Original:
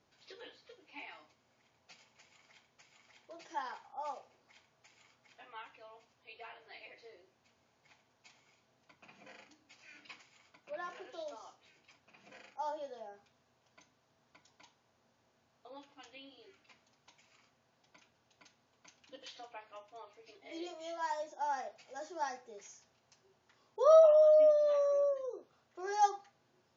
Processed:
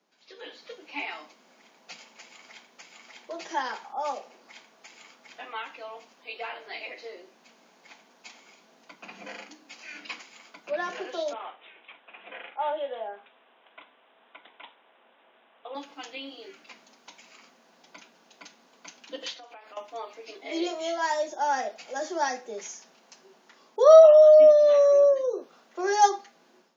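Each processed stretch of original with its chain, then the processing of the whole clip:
0:11.33–0:15.75: high-pass filter 440 Hz + bad sample-rate conversion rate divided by 6×, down none, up filtered
0:19.33–0:19.77: high-pass filter 220 Hz + downward compressor 12 to 1, threshold −58 dBFS
whole clip: Butterworth high-pass 170 Hz 96 dB per octave; automatic gain control gain up to 14.5 dB; dynamic equaliser 980 Hz, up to −6 dB, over −35 dBFS, Q 1.5

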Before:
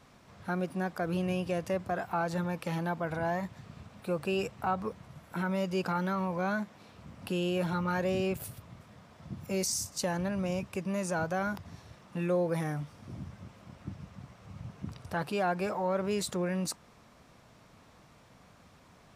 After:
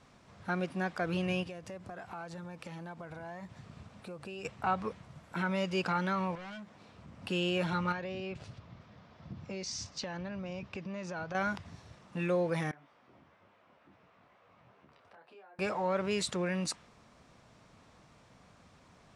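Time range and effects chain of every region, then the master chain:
0:01.43–0:04.45: downward compressor 5 to 1, threshold −40 dBFS + floating-point word with a short mantissa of 4 bits
0:06.35–0:07.24: hard clipping −36.5 dBFS + downward compressor 4 to 1, threshold −44 dBFS + high-shelf EQ 6,400 Hz −5 dB
0:07.92–0:11.35: low-pass filter 5,400 Hz 24 dB per octave + downward compressor 5 to 1, threshold −35 dBFS
0:12.71–0:15.59: three-way crossover with the lows and the highs turned down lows −21 dB, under 340 Hz, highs −19 dB, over 3,500 Hz + downward compressor 5 to 1, threshold −49 dBFS + micro pitch shift up and down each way 21 cents
whole clip: low-pass filter 9,500 Hz 24 dB per octave; dynamic equaliser 2,600 Hz, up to +7 dB, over −51 dBFS, Q 0.71; level −2 dB

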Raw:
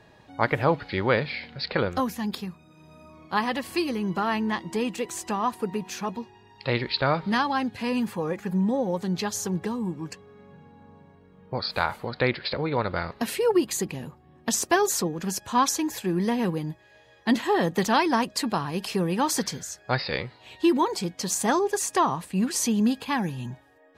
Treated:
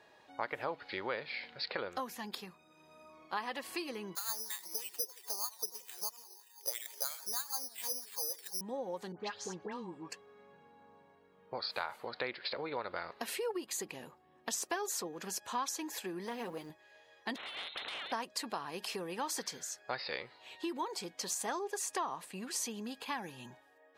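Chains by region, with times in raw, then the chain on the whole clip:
0:04.15–0:08.61: auto-filter band-pass sine 3.1 Hz 420–2,800 Hz + bad sample-rate conversion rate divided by 8×, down filtered, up zero stuff + feedback echo with a swinging delay time 86 ms, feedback 48%, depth 208 cents, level −20.5 dB
0:09.12–0:10.10: high-frequency loss of the air 120 metres + all-pass dispersion highs, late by 86 ms, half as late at 1,600 Hz
0:16.26–0:16.70: mu-law and A-law mismatch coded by mu + mains-hum notches 50/100/150/200/250/300/350 Hz + saturating transformer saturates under 510 Hz
0:17.36–0:18.12: voice inversion scrambler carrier 3,900 Hz + downward compressor 10 to 1, threshold −29 dBFS + every bin compressed towards the loudest bin 4 to 1
whole clip: low-shelf EQ 210 Hz −7.5 dB; downward compressor 3 to 1, threshold −30 dBFS; bass and treble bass −12 dB, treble 0 dB; level −5 dB

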